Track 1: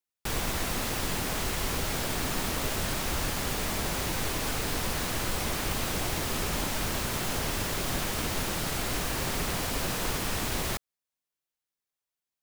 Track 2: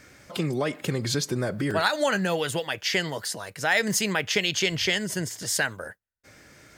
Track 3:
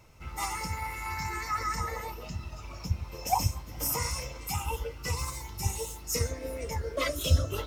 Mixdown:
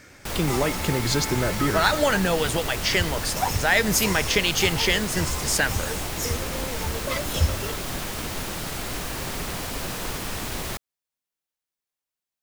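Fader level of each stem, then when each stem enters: 0.0 dB, +2.5 dB, +1.0 dB; 0.00 s, 0.00 s, 0.10 s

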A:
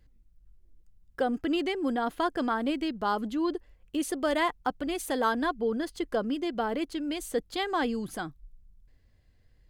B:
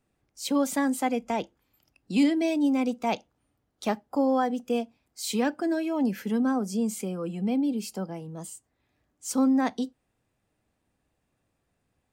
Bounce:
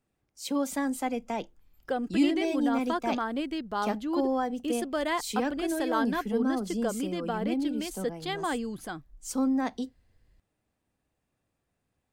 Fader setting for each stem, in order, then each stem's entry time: -2.5 dB, -4.0 dB; 0.70 s, 0.00 s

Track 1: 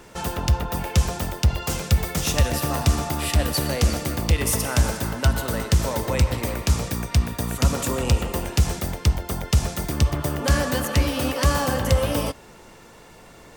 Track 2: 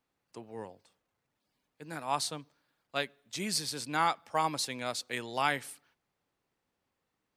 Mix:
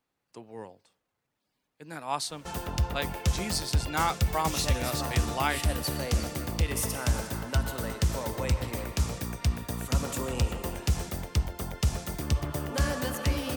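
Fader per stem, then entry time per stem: -7.5 dB, +0.5 dB; 2.30 s, 0.00 s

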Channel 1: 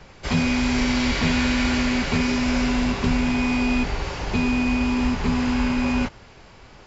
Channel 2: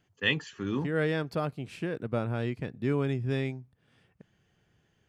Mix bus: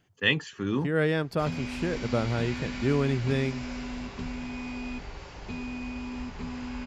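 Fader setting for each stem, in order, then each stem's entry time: -14.5 dB, +3.0 dB; 1.15 s, 0.00 s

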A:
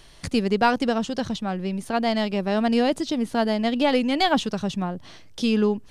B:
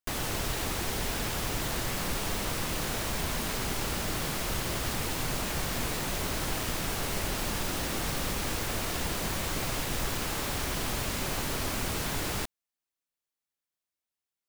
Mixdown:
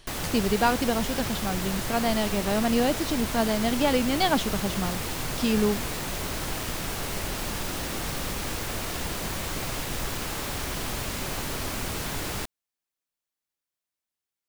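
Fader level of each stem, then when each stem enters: -3.0 dB, +0.5 dB; 0.00 s, 0.00 s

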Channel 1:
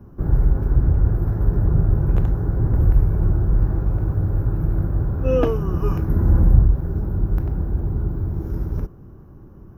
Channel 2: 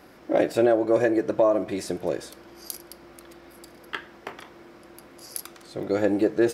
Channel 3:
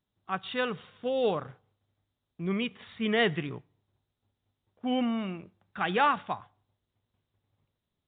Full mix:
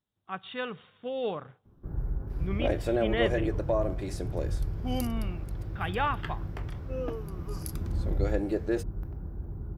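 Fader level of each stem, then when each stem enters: -15.5 dB, -8.0 dB, -4.5 dB; 1.65 s, 2.30 s, 0.00 s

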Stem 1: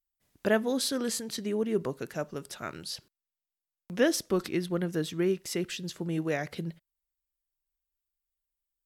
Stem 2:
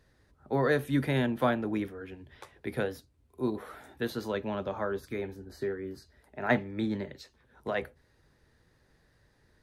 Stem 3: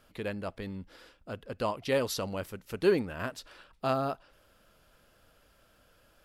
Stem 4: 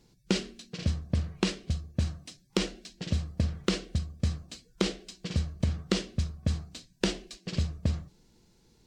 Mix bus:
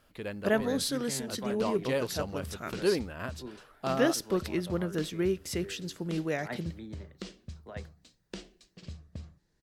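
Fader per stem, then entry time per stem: -1.5 dB, -13.5 dB, -2.5 dB, -14.5 dB; 0.00 s, 0.00 s, 0.00 s, 1.30 s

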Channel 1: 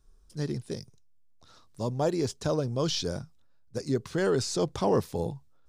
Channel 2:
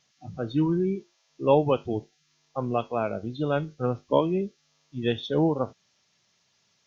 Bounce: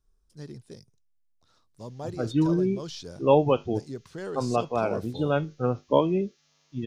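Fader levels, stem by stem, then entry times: -9.5 dB, +1.0 dB; 0.00 s, 1.80 s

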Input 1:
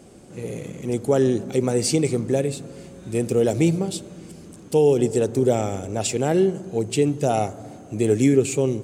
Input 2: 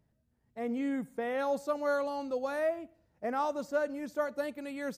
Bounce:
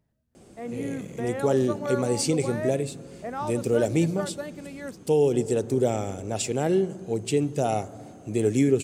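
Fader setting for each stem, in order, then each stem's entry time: -4.0 dB, -0.5 dB; 0.35 s, 0.00 s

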